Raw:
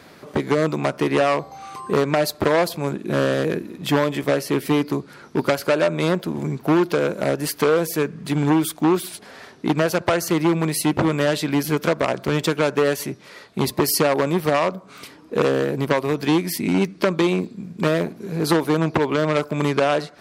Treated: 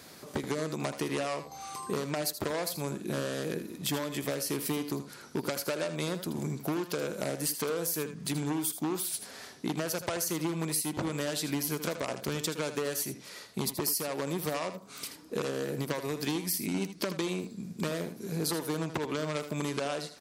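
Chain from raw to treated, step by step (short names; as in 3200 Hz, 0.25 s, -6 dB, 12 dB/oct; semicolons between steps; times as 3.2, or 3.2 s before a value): tone controls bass +1 dB, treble +13 dB; compressor 5:1, threshold -22 dBFS, peak gain reduction 14.5 dB; tapped delay 79/83 ms -11.5/-18.5 dB; gain -7.5 dB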